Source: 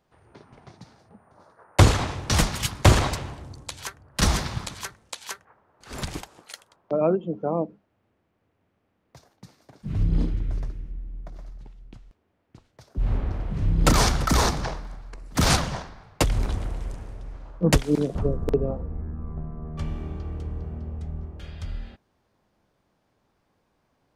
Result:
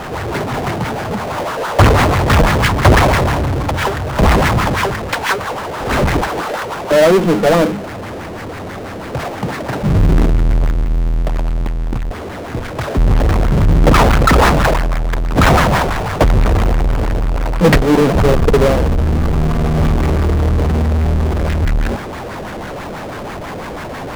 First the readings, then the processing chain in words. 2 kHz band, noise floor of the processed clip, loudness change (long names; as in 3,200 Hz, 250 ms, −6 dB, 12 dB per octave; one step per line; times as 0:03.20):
+15.0 dB, −27 dBFS, +11.0 dB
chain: auto-filter low-pass sine 6.1 Hz 490–2,100 Hz
power curve on the samples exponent 0.35
level −1 dB